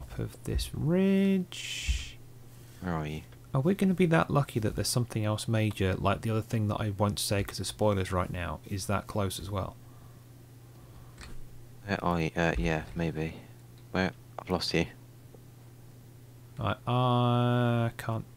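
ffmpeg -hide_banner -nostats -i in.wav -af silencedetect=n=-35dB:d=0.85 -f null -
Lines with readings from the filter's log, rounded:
silence_start: 9.69
silence_end: 11.21 | silence_duration: 1.52
silence_start: 14.86
silence_end: 16.59 | silence_duration: 1.72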